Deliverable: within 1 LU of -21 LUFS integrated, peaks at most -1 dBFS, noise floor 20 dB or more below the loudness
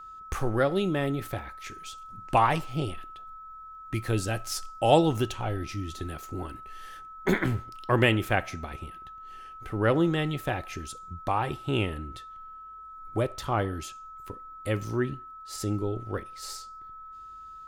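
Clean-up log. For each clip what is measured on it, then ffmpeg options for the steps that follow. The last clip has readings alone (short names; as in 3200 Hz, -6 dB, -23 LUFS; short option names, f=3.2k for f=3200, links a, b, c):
steady tone 1300 Hz; tone level -42 dBFS; loudness -29.0 LUFS; peak -6.5 dBFS; loudness target -21.0 LUFS
-> -af "bandreject=f=1.3k:w=30"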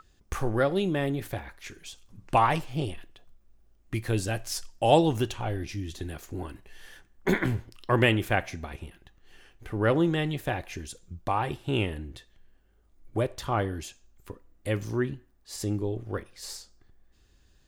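steady tone none; loudness -29.0 LUFS; peak -6.5 dBFS; loudness target -21.0 LUFS
-> -af "volume=8dB,alimiter=limit=-1dB:level=0:latency=1"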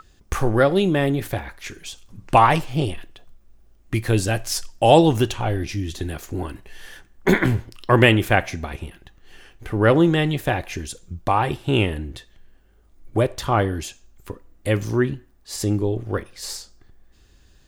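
loudness -21.0 LUFS; peak -1.0 dBFS; noise floor -55 dBFS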